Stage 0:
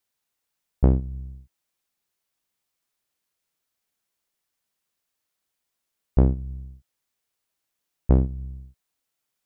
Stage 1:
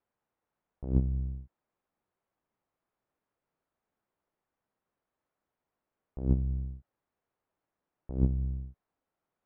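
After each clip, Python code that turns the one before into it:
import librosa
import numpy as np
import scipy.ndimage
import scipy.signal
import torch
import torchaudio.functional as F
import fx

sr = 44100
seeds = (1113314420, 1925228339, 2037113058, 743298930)

y = scipy.signal.sosfilt(scipy.signal.butter(2, 1100.0, 'lowpass', fs=sr, output='sos'), x)
y = fx.low_shelf(y, sr, hz=120.0, db=-3.5)
y = fx.over_compress(y, sr, threshold_db=-25.0, ratio=-0.5)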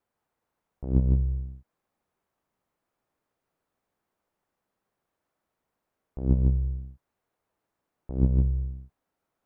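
y = x + 10.0 ** (-4.5 / 20.0) * np.pad(x, (int(155 * sr / 1000.0), 0))[:len(x)]
y = y * librosa.db_to_amplitude(3.5)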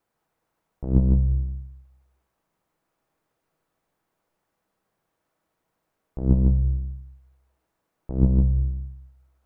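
y = fx.room_shoebox(x, sr, seeds[0], volume_m3=540.0, walls='furnished', distance_m=0.63)
y = y * librosa.db_to_amplitude(4.5)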